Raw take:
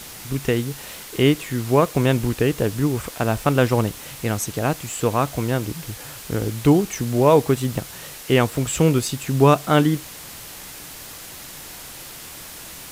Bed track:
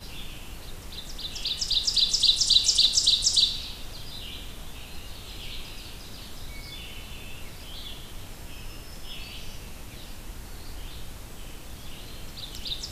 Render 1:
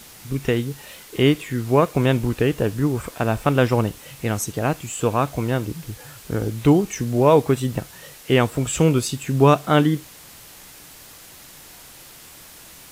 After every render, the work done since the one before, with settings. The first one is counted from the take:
noise reduction from a noise print 6 dB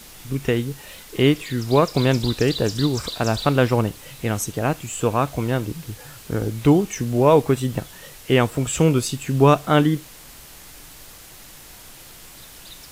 mix in bed track −11.5 dB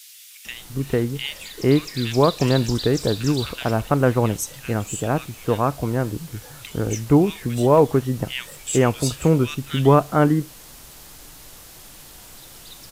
multiband delay without the direct sound highs, lows 450 ms, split 2,100 Hz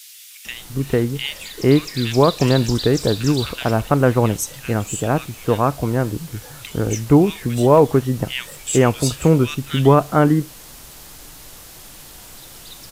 level +3 dB
brickwall limiter −2 dBFS, peak gain reduction 2.5 dB

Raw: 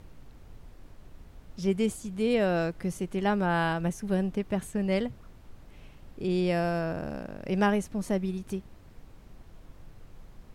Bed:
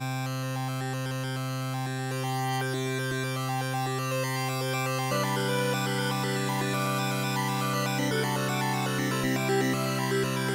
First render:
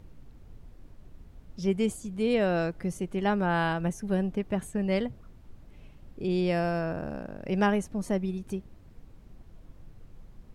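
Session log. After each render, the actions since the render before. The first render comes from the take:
broadband denoise 6 dB, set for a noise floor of −53 dBFS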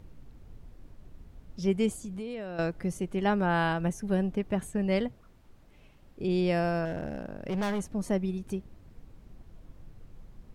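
0:01.89–0:02.59: downward compressor, threshold −34 dBFS
0:05.08–0:06.20: low-shelf EQ 300 Hz −8.5 dB
0:06.85–0:07.84: hard clipping −27.5 dBFS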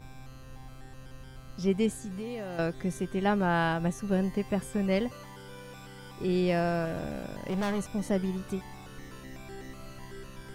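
mix in bed −19 dB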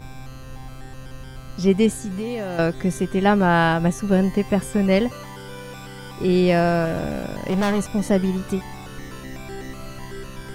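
level +9.5 dB

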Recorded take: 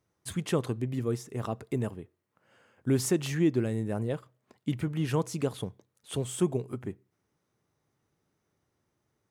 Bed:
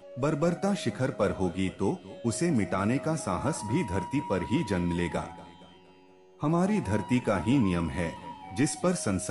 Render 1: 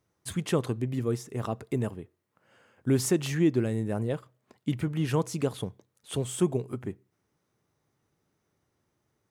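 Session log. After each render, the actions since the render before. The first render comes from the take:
level +1.5 dB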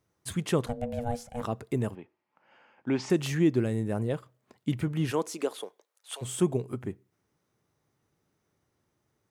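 0:00.66–0:01.43: ring modulation 360 Hz
0:01.95–0:03.10: loudspeaker in its box 230–5,000 Hz, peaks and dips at 440 Hz −6 dB, 870 Hz +9 dB, 2,400 Hz +6 dB, 3,900 Hz −5 dB
0:05.10–0:06.21: high-pass filter 210 Hz → 720 Hz 24 dB per octave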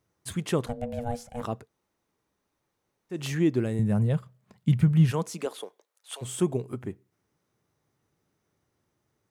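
0:01.63–0:03.17: fill with room tone, crossfade 0.16 s
0:03.79–0:05.46: low shelf with overshoot 230 Hz +6.5 dB, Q 3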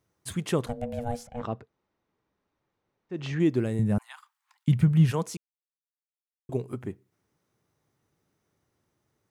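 0:01.27–0:03.40: high-frequency loss of the air 160 metres
0:03.98–0:04.68: Butterworth high-pass 830 Hz 72 dB per octave
0:05.37–0:06.49: silence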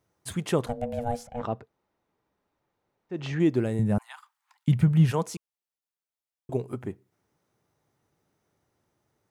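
parametric band 770 Hz +4 dB 1.4 octaves
notch filter 1,100 Hz, Q 25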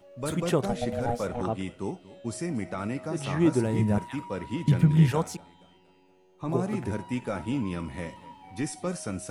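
mix in bed −5 dB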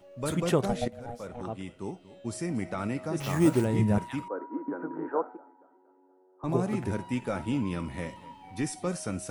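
0:00.88–0:02.64: fade in, from −15.5 dB
0:03.20–0:03.65: sample-rate reduction 8,500 Hz
0:04.28–0:06.44: Chebyshev band-pass filter 270–1,500 Hz, order 4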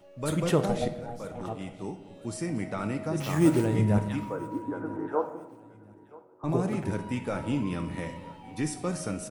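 repeating echo 977 ms, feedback 35%, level −22 dB
rectangular room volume 570 cubic metres, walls mixed, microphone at 0.52 metres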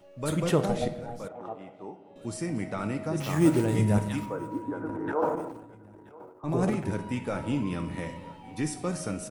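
0:01.28–0:02.16: resonant band-pass 730 Hz, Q 0.86
0:03.68–0:04.26: high-shelf EQ 4,600 Hz +9.5 dB
0:04.86–0:06.75: transient designer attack −3 dB, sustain +12 dB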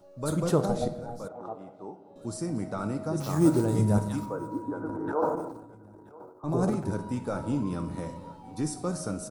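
flat-topped bell 2,400 Hz −11.5 dB 1.1 octaves

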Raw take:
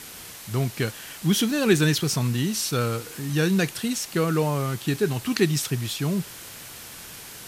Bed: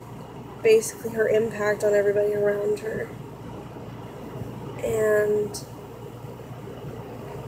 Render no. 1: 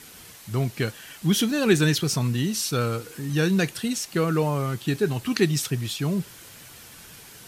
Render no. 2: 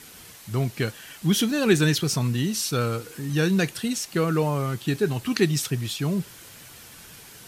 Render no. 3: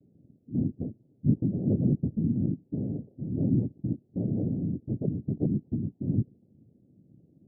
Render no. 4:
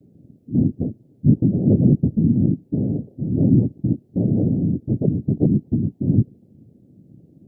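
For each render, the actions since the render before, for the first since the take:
broadband denoise 6 dB, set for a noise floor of −41 dBFS
no processing that can be heard
cochlear-implant simulation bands 4; Gaussian smoothing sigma 25 samples
level +10 dB; brickwall limiter −2 dBFS, peak gain reduction 1.5 dB

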